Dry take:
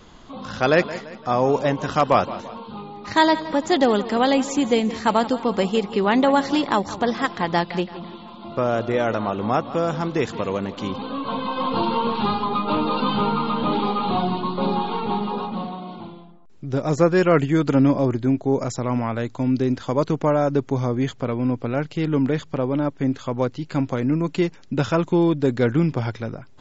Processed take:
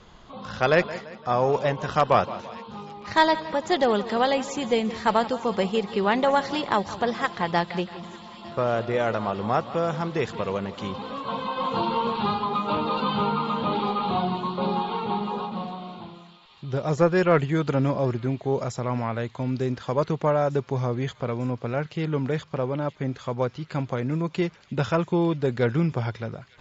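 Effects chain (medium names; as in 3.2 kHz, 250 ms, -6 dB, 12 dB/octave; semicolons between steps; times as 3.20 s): peaking EQ 280 Hz -9 dB 0.43 oct; Chebyshev shaper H 2 -17 dB, 8 -41 dB, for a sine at -4.5 dBFS; distance through air 52 m; feedback echo behind a high-pass 901 ms, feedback 82%, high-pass 2.7 kHz, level -16.5 dB; trim -2 dB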